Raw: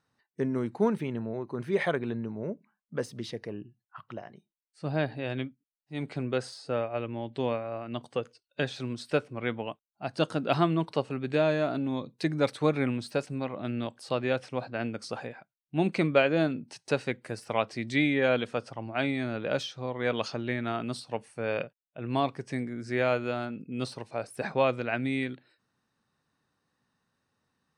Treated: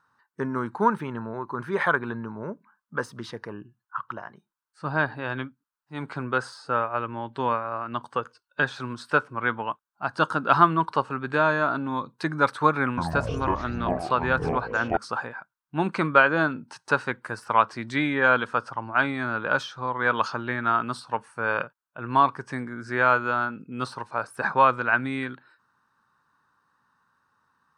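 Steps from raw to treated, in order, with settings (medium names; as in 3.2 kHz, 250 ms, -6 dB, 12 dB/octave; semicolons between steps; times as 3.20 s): high-order bell 1.2 kHz +15 dB 1.1 oct; 12.82–14.97 s: ever faster or slower copies 155 ms, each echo -7 st, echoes 3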